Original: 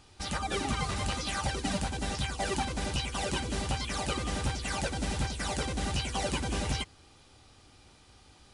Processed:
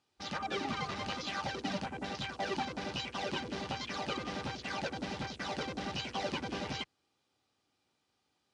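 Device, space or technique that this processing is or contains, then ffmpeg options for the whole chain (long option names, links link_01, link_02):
over-cleaned archive recording: -af "highpass=170,lowpass=7900,afwtdn=0.00794,volume=-3dB"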